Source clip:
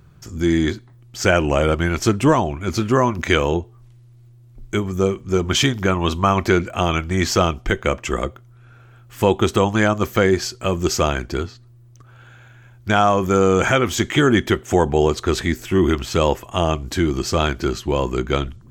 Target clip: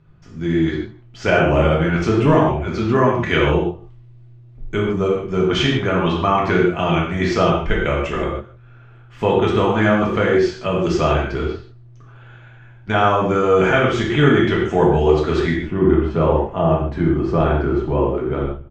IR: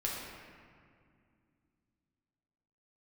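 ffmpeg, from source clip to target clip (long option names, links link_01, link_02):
-filter_complex "[0:a]asetnsamples=nb_out_samples=441:pad=0,asendcmd='15.56 lowpass f 1300',lowpass=3200,dynaudnorm=framelen=180:gausssize=9:maxgain=11.5dB,asplit=2[link_01][link_02];[link_02]adelay=157.4,volume=-23dB,highshelf=frequency=4000:gain=-3.54[link_03];[link_01][link_03]amix=inputs=2:normalize=0[link_04];[1:a]atrim=start_sample=2205,afade=type=out:start_time=0.29:duration=0.01,atrim=end_sample=13230,asetrate=66150,aresample=44100[link_05];[link_04][link_05]afir=irnorm=-1:irlink=0,volume=-2dB"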